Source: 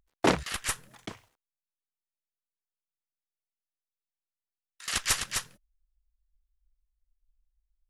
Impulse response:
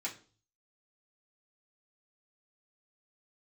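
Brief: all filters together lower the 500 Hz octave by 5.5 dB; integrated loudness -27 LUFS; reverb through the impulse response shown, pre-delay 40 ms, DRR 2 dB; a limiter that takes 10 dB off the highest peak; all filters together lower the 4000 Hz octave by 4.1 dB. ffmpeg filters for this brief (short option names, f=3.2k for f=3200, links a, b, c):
-filter_complex "[0:a]equalizer=f=500:t=o:g=-7.5,equalizer=f=4k:t=o:g=-5.5,alimiter=limit=-21dB:level=0:latency=1,asplit=2[a][b];[1:a]atrim=start_sample=2205,adelay=40[c];[b][c]afir=irnorm=-1:irlink=0,volume=-3.5dB[d];[a][d]amix=inputs=2:normalize=0,volume=6.5dB"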